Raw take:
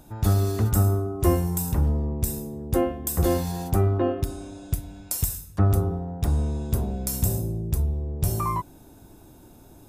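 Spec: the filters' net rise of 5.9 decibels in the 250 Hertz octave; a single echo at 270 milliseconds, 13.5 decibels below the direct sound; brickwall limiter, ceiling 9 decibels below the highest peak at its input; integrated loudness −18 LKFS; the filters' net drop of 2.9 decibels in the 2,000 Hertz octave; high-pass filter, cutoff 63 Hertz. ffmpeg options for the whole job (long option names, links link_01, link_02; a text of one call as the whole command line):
ffmpeg -i in.wav -af "highpass=63,equalizer=frequency=250:width_type=o:gain=8.5,equalizer=frequency=2000:width_type=o:gain=-4,alimiter=limit=-15dB:level=0:latency=1,aecho=1:1:270:0.211,volume=8dB" out.wav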